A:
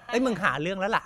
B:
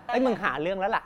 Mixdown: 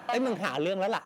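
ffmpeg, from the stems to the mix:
-filter_complex "[0:a]volume=1[s0];[1:a]asoftclip=type=hard:threshold=0.0562,adelay=0.4,volume=1.33[s1];[s0][s1]amix=inputs=2:normalize=0,highpass=180,acompressor=threshold=0.0447:ratio=3"

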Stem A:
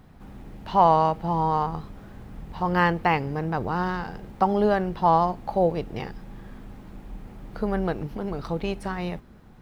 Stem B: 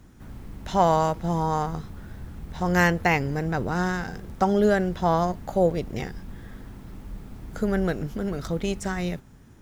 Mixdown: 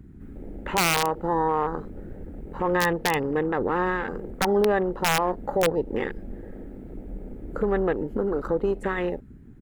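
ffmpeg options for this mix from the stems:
-filter_complex "[0:a]volume=1.12[s0];[1:a]firequalizer=gain_entry='entry(130,0);entry(200,5);entry(580,9);entry(910,-27);entry(1300,8);entry(2200,8);entry(4600,-20);entry(7400,1)':delay=0.05:min_phase=1,acompressor=threshold=0.0631:ratio=10,volume=-1,adelay=0.5,volume=1.12[s1];[s0][s1]amix=inputs=2:normalize=0,afwtdn=0.02,aeval=exprs='(mod(2.82*val(0)+1,2)-1)/2.82':c=same,alimiter=limit=0.2:level=0:latency=1:release=30"

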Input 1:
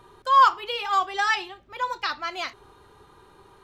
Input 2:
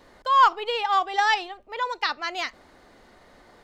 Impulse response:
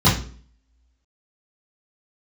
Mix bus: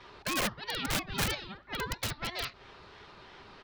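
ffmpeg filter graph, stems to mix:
-filter_complex "[0:a]volume=0.668[s0];[1:a]aeval=exprs='val(0)*sin(2*PI*1000*n/s+1000*0.45/3*sin(2*PI*3*n/s))':c=same,adelay=3.2,volume=1.06[s1];[s0][s1]amix=inputs=2:normalize=0,acrossover=split=200[s2][s3];[s3]acompressor=threshold=0.0158:ratio=5[s4];[s2][s4]amix=inputs=2:normalize=0,lowpass=f=4300:t=q:w=2.1,aeval=exprs='(mod(15.8*val(0)+1,2)-1)/15.8':c=same"

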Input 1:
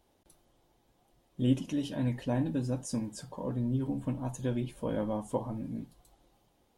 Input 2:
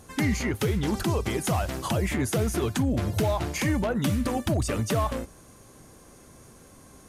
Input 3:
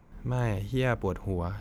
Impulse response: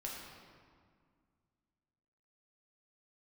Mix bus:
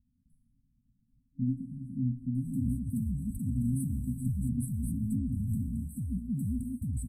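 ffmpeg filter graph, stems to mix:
-filter_complex "[0:a]volume=1.12,asplit=2[s0][s1];[s1]volume=0.168[s2];[1:a]highshelf=f=5700:g=-8.5,alimiter=limit=0.075:level=0:latency=1:release=12,adelay=2350,volume=0.75[s3];[s0]lowpass=3200,alimiter=limit=0.0708:level=0:latency=1:release=248,volume=1[s4];[3:a]atrim=start_sample=2205[s5];[s2][s5]afir=irnorm=-1:irlink=0[s6];[s3][s4][s6]amix=inputs=3:normalize=0,afftfilt=real='re*(1-between(b*sr/4096,270,7700))':imag='im*(1-between(b*sr/4096,270,7700))':win_size=4096:overlap=0.75"

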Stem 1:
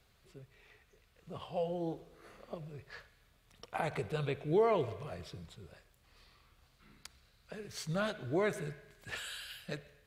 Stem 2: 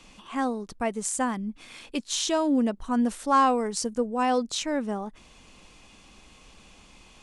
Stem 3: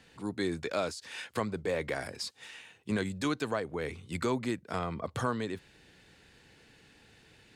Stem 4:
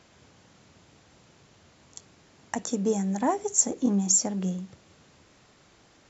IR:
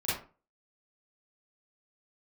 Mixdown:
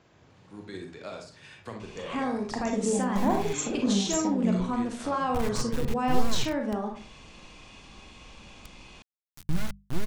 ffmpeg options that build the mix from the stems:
-filter_complex "[0:a]acrusher=bits=3:dc=4:mix=0:aa=0.000001,asubboost=boost=9.5:cutoff=160,bandreject=f=50:t=h:w=6,bandreject=f=100:t=h:w=6,bandreject=f=150:t=h:w=6,bandreject=f=200:t=h:w=6,adelay=1600,volume=0.891[s0];[1:a]lowpass=6600,acompressor=threshold=0.0398:ratio=6,alimiter=limit=0.0668:level=0:latency=1:release=163,adelay=1800,volume=1,asplit=2[s1][s2];[s2]volume=0.447[s3];[2:a]tremolo=f=13:d=0.43,lowpass=8300,adelay=300,volume=0.335,asplit=2[s4][s5];[s5]volume=0.447[s6];[3:a]highshelf=f=3600:g=-11.5,volume=0.596,asplit=3[s7][s8][s9];[s8]volume=0.447[s10];[s9]apad=whole_len=346592[s11];[s4][s11]sidechaincompress=threshold=0.02:ratio=8:attack=16:release=240[s12];[4:a]atrim=start_sample=2205[s13];[s3][s6][s10]amix=inputs=3:normalize=0[s14];[s14][s13]afir=irnorm=-1:irlink=0[s15];[s0][s1][s12][s7][s15]amix=inputs=5:normalize=0"

